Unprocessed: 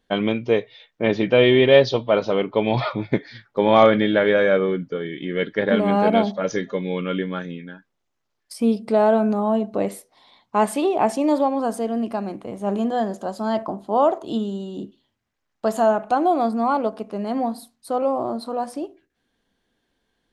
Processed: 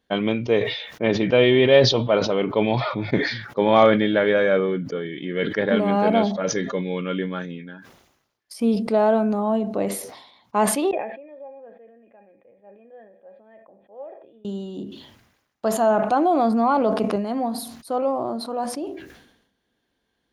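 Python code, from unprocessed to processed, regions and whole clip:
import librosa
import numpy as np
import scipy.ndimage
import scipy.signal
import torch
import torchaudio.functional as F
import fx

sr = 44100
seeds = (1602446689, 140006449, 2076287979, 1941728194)

y = fx.chain(x, sr, fx.formant_cascade(vowel='e'),
    fx.high_shelf(hz=2200.0, db=11.0),
    fx.comb_fb(f0_hz=820.0, decay_s=0.17, harmonics='all', damping=0.0, mix_pct=80), at=(10.91, 14.45))
y = fx.chain(y, sr, fx.high_shelf(hz=6800.0, db=-4.0),
    fx.env_flatten(amount_pct=70), at=(15.9, 17.16))
y = scipy.signal.sosfilt(scipy.signal.butter(2, 43.0, 'highpass', fs=sr, output='sos'), y)
y = fx.notch(y, sr, hz=7900.0, q=7.4)
y = fx.sustainer(y, sr, db_per_s=66.0)
y = F.gain(torch.from_numpy(y), -1.5).numpy()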